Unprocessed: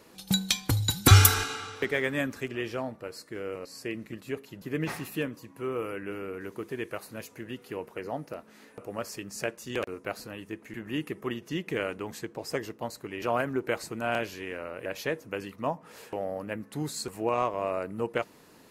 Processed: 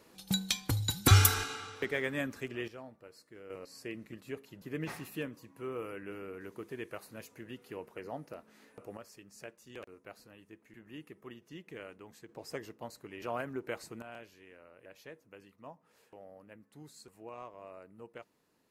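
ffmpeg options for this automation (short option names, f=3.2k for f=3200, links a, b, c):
-af "asetnsamples=n=441:p=0,asendcmd='2.68 volume volume -14.5dB;3.5 volume volume -7dB;8.97 volume volume -15.5dB;12.29 volume volume -9dB;14.02 volume volume -19dB',volume=-5.5dB"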